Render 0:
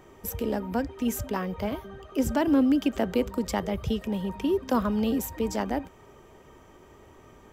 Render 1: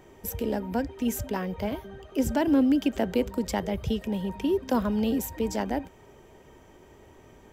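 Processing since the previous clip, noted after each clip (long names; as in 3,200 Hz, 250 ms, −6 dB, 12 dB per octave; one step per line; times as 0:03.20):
parametric band 1,200 Hz −9.5 dB 0.21 octaves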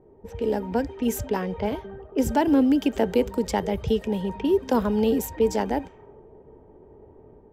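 low-pass that shuts in the quiet parts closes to 540 Hz, open at −25 dBFS
hollow resonant body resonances 440/860 Hz, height 8 dB
automatic gain control gain up to 4.5 dB
level −2.5 dB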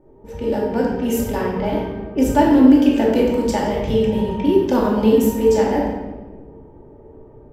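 rectangular room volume 750 cubic metres, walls mixed, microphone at 2.5 metres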